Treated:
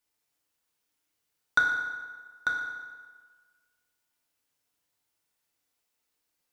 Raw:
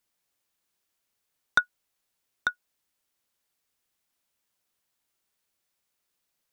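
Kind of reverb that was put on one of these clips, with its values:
feedback delay network reverb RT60 1.5 s, low-frequency decay 0.85×, high-frequency decay 0.75×, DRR −1.5 dB
level −4 dB

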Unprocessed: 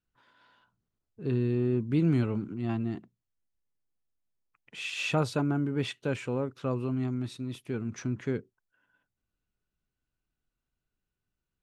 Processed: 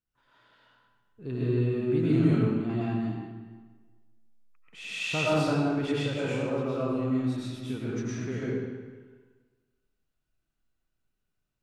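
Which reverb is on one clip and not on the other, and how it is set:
comb and all-pass reverb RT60 1.4 s, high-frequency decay 0.85×, pre-delay 70 ms, DRR −8 dB
level −5.5 dB

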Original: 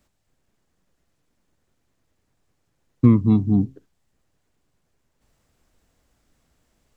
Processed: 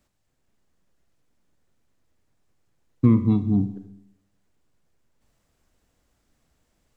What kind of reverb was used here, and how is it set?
four-comb reverb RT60 0.82 s, combs from 31 ms, DRR 10.5 dB
level −3 dB

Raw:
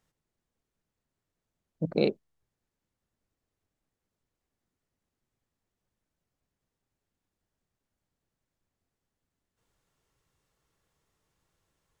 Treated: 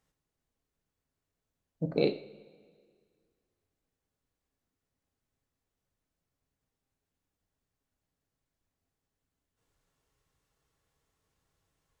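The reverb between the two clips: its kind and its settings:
coupled-rooms reverb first 0.44 s, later 2 s, from −18 dB, DRR 6 dB
level −2.5 dB

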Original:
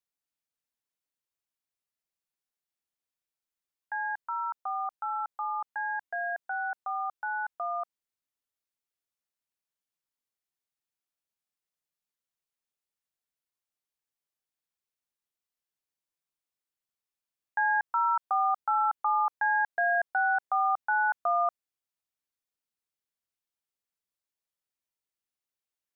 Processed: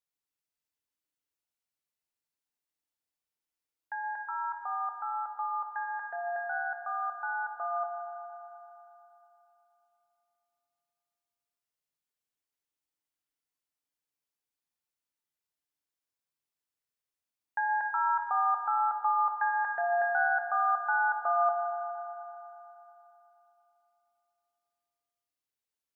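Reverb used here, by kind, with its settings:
feedback delay network reverb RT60 3.3 s, high-frequency decay 0.85×, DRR 2 dB
level −3 dB

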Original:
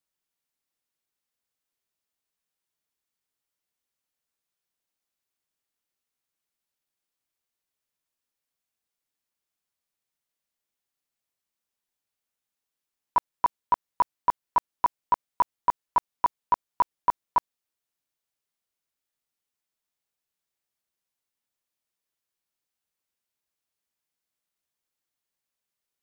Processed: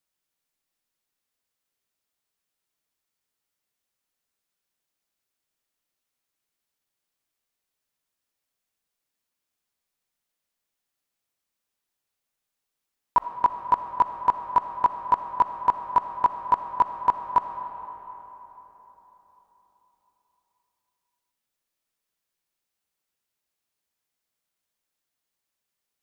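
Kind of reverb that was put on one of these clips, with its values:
comb and all-pass reverb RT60 4.2 s, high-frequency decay 0.55×, pre-delay 20 ms, DRR 7 dB
level +2.5 dB

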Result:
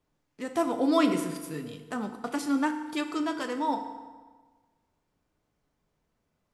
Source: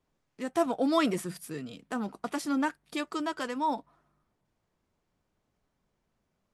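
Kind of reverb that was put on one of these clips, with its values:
feedback delay network reverb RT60 1.4 s, low-frequency decay 1×, high-frequency decay 0.75×, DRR 6 dB

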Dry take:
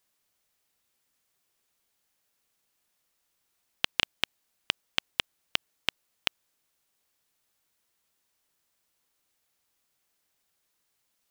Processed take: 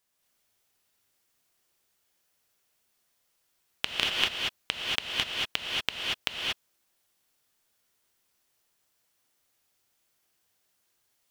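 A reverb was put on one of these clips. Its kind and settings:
reverb whose tail is shaped and stops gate 260 ms rising, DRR −3.5 dB
level −2.5 dB

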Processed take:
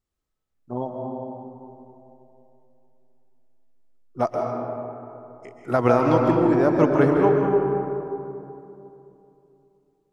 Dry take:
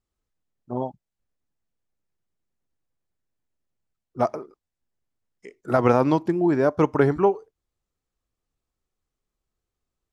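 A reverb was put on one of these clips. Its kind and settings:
comb and all-pass reverb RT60 3 s, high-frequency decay 0.4×, pre-delay 100 ms, DRR 0.5 dB
level −1 dB

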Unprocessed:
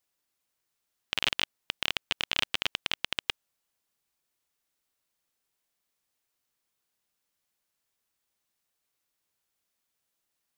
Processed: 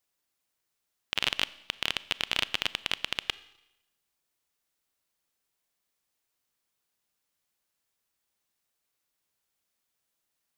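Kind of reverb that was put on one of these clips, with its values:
four-comb reverb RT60 0.91 s, combs from 28 ms, DRR 18 dB

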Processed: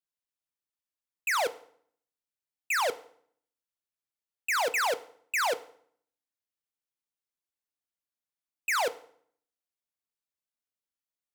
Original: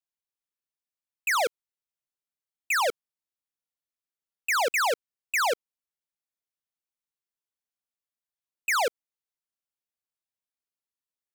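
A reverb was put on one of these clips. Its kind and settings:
feedback delay network reverb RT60 0.59 s, low-frequency decay 1.3×, high-frequency decay 0.85×, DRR 12.5 dB
level −3 dB

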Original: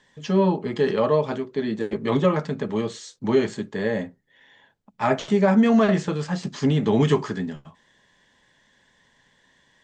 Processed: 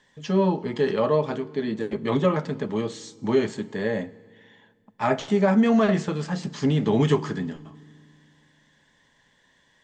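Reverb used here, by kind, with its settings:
feedback delay network reverb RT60 1.9 s, low-frequency decay 1.4×, high-frequency decay 0.95×, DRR 18.5 dB
level −1.5 dB

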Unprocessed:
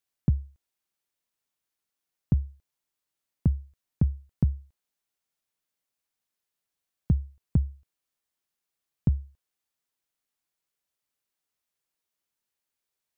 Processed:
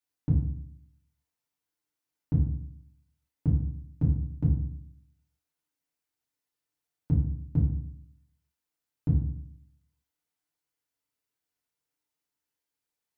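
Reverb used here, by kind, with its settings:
feedback delay network reverb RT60 0.63 s, low-frequency decay 1.3×, high-frequency decay 0.6×, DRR −5.5 dB
level −8 dB

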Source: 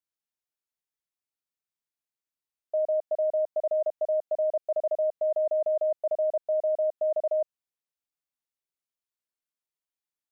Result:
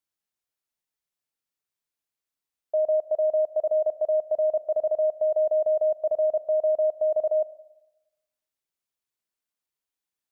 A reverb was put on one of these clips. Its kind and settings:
four-comb reverb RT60 1 s, combs from 32 ms, DRR 15.5 dB
level +3 dB

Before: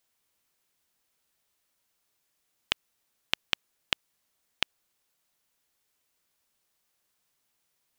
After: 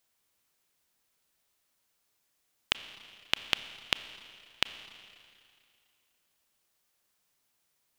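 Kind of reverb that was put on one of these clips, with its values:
four-comb reverb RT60 2.4 s, combs from 28 ms, DRR 12 dB

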